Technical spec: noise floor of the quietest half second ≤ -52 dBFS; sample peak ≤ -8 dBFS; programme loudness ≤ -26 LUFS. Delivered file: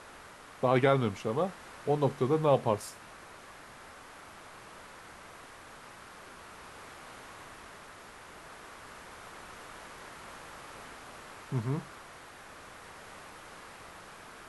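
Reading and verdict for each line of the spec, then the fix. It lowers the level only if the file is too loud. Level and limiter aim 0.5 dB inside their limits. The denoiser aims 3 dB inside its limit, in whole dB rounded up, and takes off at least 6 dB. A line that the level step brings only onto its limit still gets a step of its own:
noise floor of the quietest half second -51 dBFS: fail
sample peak -11.0 dBFS: OK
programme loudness -30.0 LUFS: OK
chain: denoiser 6 dB, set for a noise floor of -51 dBFS

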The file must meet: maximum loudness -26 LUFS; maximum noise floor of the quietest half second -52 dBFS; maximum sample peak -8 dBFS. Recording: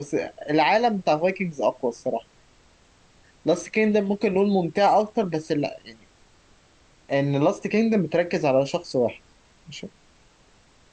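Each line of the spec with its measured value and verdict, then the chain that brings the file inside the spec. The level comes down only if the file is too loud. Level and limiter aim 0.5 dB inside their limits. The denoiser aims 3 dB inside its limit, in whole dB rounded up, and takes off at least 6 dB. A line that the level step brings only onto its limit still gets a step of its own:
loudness -23.5 LUFS: fail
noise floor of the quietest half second -57 dBFS: OK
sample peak -8.5 dBFS: OK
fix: gain -3 dB

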